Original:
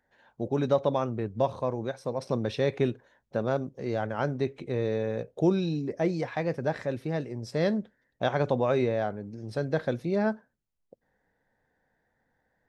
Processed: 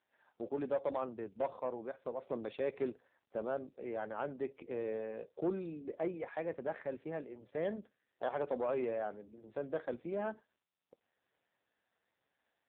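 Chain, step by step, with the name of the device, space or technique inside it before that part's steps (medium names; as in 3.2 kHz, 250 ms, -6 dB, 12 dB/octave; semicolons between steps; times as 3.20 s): telephone (band-pass 290–3300 Hz; saturation -19.5 dBFS, distortion -17 dB; trim -6 dB; AMR-NB 5.9 kbps 8 kHz)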